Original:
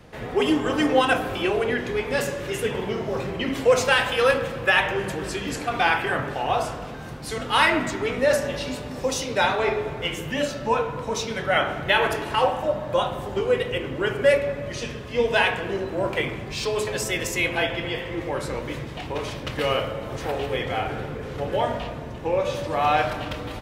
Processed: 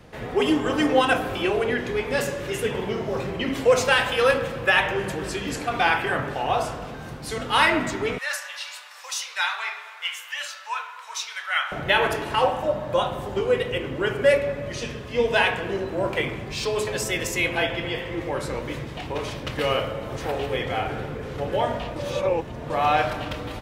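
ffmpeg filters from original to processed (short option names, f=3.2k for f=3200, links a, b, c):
-filter_complex "[0:a]asettb=1/sr,asplit=3[a][b][c];[a]atrim=end=8.184[d];[b]atrim=start=8.18:end=11.72,asetpts=PTS-STARTPTS,afade=t=in:d=0.004:c=qsin,afade=t=out:st=3.536:d=0.004:c=qsin,highpass=f=1.1k:w=0.5412,highpass=f=1.1k:w=1.3066[e];[c]atrim=start=11.716[f];[d][e]acrossfade=d=0.004:c1=hsin:c2=qsin[g];[g][f]acrossfade=d=0.004:c1=qsin:c2=hsin,asplit=3[h][i][j];[h]atrim=end=21.962[k];[i]atrim=start=21.958:end=22.702,asetpts=PTS-STARTPTS,areverse[l];[j]atrim=start=22.698[m];[k][l]acrossfade=d=0.004:c1=hsin:c2=hsin[n];[n][m]acrossfade=d=0.004:c1=hsin:c2=hsin"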